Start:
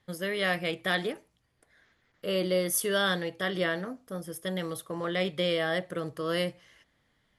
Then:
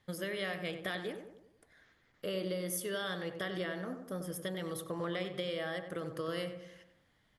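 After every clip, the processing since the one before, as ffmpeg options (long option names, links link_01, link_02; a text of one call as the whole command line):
ffmpeg -i in.wav -filter_complex "[0:a]acompressor=threshold=-34dB:ratio=6,asplit=2[link_01][link_02];[link_02]adelay=94,lowpass=frequency=1600:poles=1,volume=-7dB,asplit=2[link_03][link_04];[link_04]adelay=94,lowpass=frequency=1600:poles=1,volume=0.52,asplit=2[link_05][link_06];[link_06]adelay=94,lowpass=frequency=1600:poles=1,volume=0.52,asplit=2[link_07][link_08];[link_08]adelay=94,lowpass=frequency=1600:poles=1,volume=0.52,asplit=2[link_09][link_10];[link_10]adelay=94,lowpass=frequency=1600:poles=1,volume=0.52,asplit=2[link_11][link_12];[link_12]adelay=94,lowpass=frequency=1600:poles=1,volume=0.52[link_13];[link_03][link_05][link_07][link_09][link_11][link_13]amix=inputs=6:normalize=0[link_14];[link_01][link_14]amix=inputs=2:normalize=0,volume=-1dB" out.wav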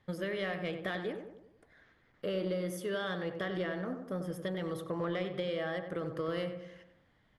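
ffmpeg -i in.wav -filter_complex "[0:a]aemphasis=mode=reproduction:type=75kf,asplit=2[link_01][link_02];[link_02]asoftclip=type=tanh:threshold=-32.5dB,volume=-3dB[link_03];[link_01][link_03]amix=inputs=2:normalize=0,volume=-1dB" out.wav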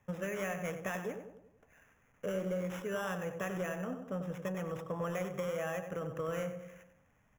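ffmpeg -i in.wav -filter_complex "[0:a]equalizer=frequency=340:width_type=o:width=0.3:gain=-12,acrossover=split=100|1700[link_01][link_02][link_03];[link_03]acrusher=samples=10:mix=1:aa=0.000001[link_04];[link_01][link_02][link_04]amix=inputs=3:normalize=0" out.wav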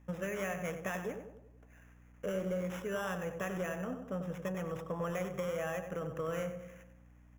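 ffmpeg -i in.wav -af "aeval=exprs='val(0)+0.00126*(sin(2*PI*60*n/s)+sin(2*PI*2*60*n/s)/2+sin(2*PI*3*60*n/s)/3+sin(2*PI*4*60*n/s)/4+sin(2*PI*5*60*n/s)/5)':channel_layout=same" out.wav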